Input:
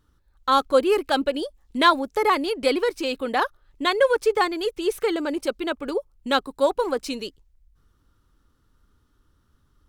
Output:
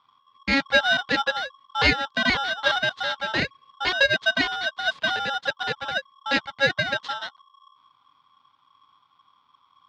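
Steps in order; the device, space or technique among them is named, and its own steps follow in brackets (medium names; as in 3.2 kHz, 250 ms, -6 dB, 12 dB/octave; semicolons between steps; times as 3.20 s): 4.99–5.57 s: high-pass 130 Hz; ring modulator pedal into a guitar cabinet (polarity switched at an audio rate 1.1 kHz; cabinet simulation 91–4200 Hz, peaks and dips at 360 Hz -7 dB, 670 Hz -7 dB, 980 Hz +4 dB, 2.5 kHz -5 dB, 3.7 kHz +5 dB)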